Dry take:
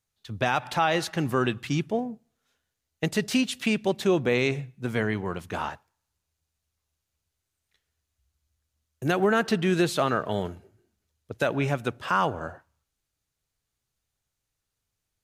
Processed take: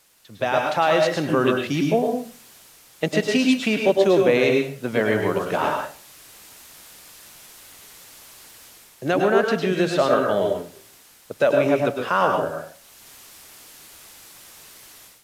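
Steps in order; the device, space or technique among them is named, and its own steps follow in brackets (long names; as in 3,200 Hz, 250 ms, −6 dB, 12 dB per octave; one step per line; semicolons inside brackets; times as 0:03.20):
filmed off a television (band-pass filter 170–6,700 Hz; parametric band 570 Hz +8 dB 0.45 octaves; convolution reverb RT60 0.35 s, pre-delay 97 ms, DRR 2 dB; white noise bed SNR 27 dB; automatic gain control gain up to 13.5 dB; level −5 dB; AAC 96 kbit/s 32,000 Hz)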